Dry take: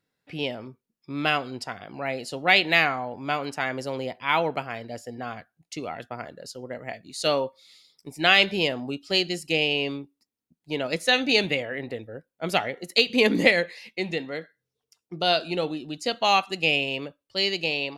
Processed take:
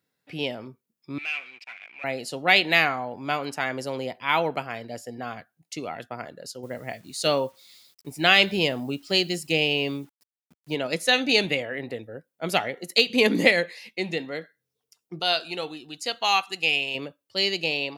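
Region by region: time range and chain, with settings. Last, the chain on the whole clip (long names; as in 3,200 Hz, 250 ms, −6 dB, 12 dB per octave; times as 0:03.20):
0:01.18–0:02.04: high-frequency loss of the air 89 metres + leveller curve on the samples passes 5 + resonant band-pass 2,400 Hz, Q 15
0:06.63–0:10.75: low-shelf EQ 130 Hz +8.5 dB + bit-depth reduction 10 bits, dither none
0:15.19–0:16.95: parametric band 200 Hz −10 dB 2.3 octaves + notch filter 590 Hz, Q 5.4
whole clip: high-pass filter 89 Hz; high-shelf EQ 9,900 Hz +8 dB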